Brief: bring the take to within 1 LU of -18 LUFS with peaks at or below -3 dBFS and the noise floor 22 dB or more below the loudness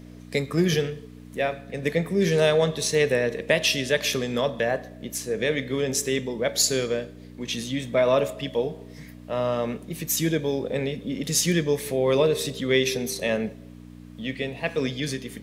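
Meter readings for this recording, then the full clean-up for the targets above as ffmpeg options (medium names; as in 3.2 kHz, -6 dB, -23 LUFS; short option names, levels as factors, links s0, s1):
hum 60 Hz; highest harmonic 300 Hz; hum level -42 dBFS; loudness -25.0 LUFS; peak level -7.0 dBFS; loudness target -18.0 LUFS
-> -af "bandreject=f=60:t=h:w=4,bandreject=f=120:t=h:w=4,bandreject=f=180:t=h:w=4,bandreject=f=240:t=h:w=4,bandreject=f=300:t=h:w=4"
-af "volume=2.24,alimiter=limit=0.708:level=0:latency=1"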